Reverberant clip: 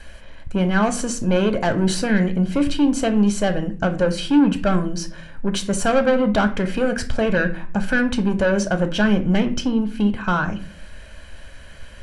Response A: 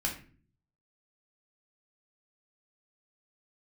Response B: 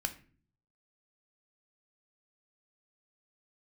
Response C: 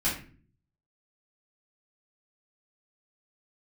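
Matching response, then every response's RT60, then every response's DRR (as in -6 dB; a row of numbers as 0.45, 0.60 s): B; 0.45, 0.45, 0.45 s; -1.0, 7.0, -9.0 dB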